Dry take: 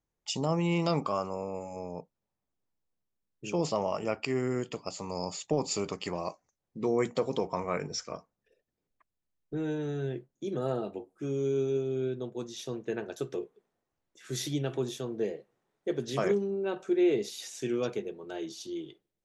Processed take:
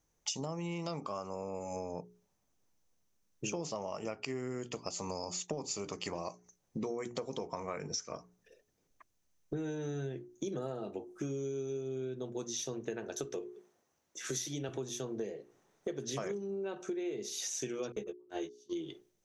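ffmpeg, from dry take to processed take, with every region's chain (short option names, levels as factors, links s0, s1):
-filter_complex "[0:a]asettb=1/sr,asplit=3[s0][s1][s2];[s0]atrim=end=13.244[s3];[s1]atrim=start=13.24:end=14.69,asetpts=PTS-STARTPTS,afade=t=in:d=0.004:c=qsin,afade=t=out:st=1.446:d=0.004:c=qsin,highpass=f=160:p=1,bandreject=f=60:t=h:w=6,bandreject=f=120:t=h:w=6,bandreject=f=180:t=h:w=6,bandreject=f=240:t=h:w=6,bandreject=f=300:t=h:w=6[s4];[s2]atrim=start=14.686[s5];[s3][s4]acrossfade=d=0.004:c1=hsin:c2=qsin[s6];[s6][s5]acrossfade=d=0.004:c1=qsin:c2=hsin,asettb=1/sr,asplit=3[s7][s8][s9];[s7]atrim=end=17.924[s10];[s8]atrim=start=17.92:end=18.73,asetpts=PTS-STARTPTS,afade=t=in:d=0.004:c=qsin,afade=t=out:st=0.806:d=0.004:c=qsin,agate=range=0.0178:threshold=0.0141:ratio=16:release=100:detection=peak,asplit=2[s11][s12];[s12]adelay=14,volume=0.708[s13];[s11][s13]amix=inputs=2:normalize=0,atrim=end_sample=35721[s14];[s9]atrim=start=18.726[s15];[s10][s14]acrossfade=d=0.004:c1=hsin:c2=qsin[s16];[s16][s15]acrossfade=d=0.004:c1=qsin:c2=hsin,equalizer=f=6100:w=4.9:g=11.5,bandreject=f=60:t=h:w=6,bandreject=f=120:t=h:w=6,bandreject=f=180:t=h:w=6,bandreject=f=240:t=h:w=6,bandreject=f=300:t=h:w=6,bandreject=f=360:t=h:w=6,bandreject=f=420:t=h:w=6,acompressor=threshold=0.00708:ratio=12,volume=2.51"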